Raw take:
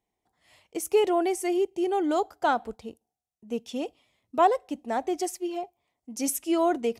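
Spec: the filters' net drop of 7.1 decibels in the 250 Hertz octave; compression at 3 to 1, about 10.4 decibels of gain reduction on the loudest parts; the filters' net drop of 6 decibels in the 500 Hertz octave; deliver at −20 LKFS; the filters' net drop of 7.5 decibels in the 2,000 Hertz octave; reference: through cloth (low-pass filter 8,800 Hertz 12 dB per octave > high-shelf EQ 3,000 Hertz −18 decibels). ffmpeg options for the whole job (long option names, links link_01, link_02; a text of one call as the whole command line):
ffmpeg -i in.wav -af "equalizer=frequency=250:width_type=o:gain=-8,equalizer=frequency=500:width_type=o:gain=-4.5,equalizer=frequency=2000:width_type=o:gain=-4,acompressor=threshold=-33dB:ratio=3,lowpass=8800,highshelf=frequency=3000:gain=-18,volume=19dB" out.wav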